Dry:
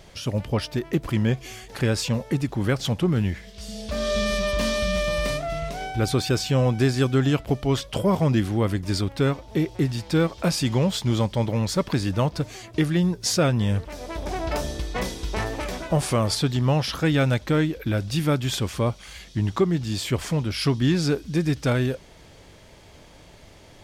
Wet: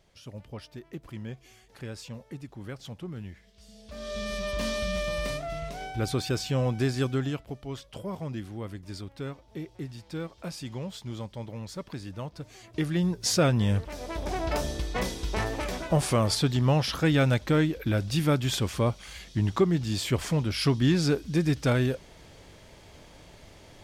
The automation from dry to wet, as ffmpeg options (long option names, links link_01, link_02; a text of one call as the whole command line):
ffmpeg -i in.wav -af "volume=6.5dB,afade=type=in:start_time=3.83:duration=0.83:silence=0.298538,afade=type=out:start_time=7.06:duration=0.42:silence=0.375837,afade=type=in:start_time=12.38:duration=0.98:silence=0.237137" out.wav